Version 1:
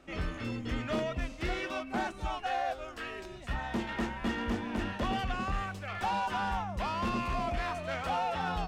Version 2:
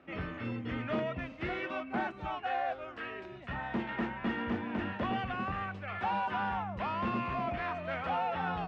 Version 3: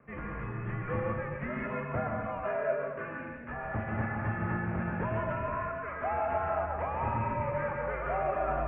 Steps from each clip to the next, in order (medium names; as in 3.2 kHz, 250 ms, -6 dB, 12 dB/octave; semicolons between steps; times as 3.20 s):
Chebyshev band-pass 110–2300 Hz, order 2
plate-style reverb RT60 0.93 s, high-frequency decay 0.85×, pre-delay 110 ms, DRR 1 dB; mistuned SSB -120 Hz 160–2300 Hz